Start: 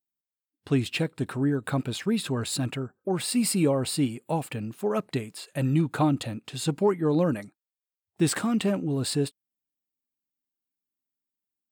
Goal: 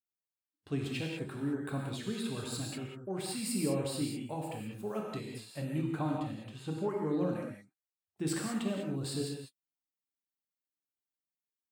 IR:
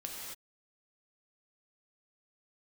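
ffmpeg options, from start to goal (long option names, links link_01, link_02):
-filter_complex "[0:a]asettb=1/sr,asplit=3[link_01][link_02][link_03];[link_01]atrim=end=5.784[link_04];[link_02]atrim=start=5.78:end=8.27,asetpts=PTS-STARTPTS,afade=type=in:duration=0.004:curve=qsin,afade=type=out:start_time=2.486:duration=0.004:curve=qsin,acrossover=split=2500[link_05][link_06];[link_06]acompressor=threshold=-45dB:ratio=4:attack=1:release=60[link_07];[link_05][link_07]amix=inputs=2:normalize=0[link_08];[link_03]atrim=start=8.266[link_09];[link_04][link_08]acrossfade=duration=0.004:curve1=hsin:curve2=qsin[link_10];[link_10][link_09]acrossfade=duration=0.004:curve1=qsin:curve2=hsin[link_11];[1:a]atrim=start_sample=2205,afade=type=out:start_time=0.26:duration=0.01,atrim=end_sample=11907[link_12];[link_11][link_12]afir=irnorm=-1:irlink=0,volume=-8dB"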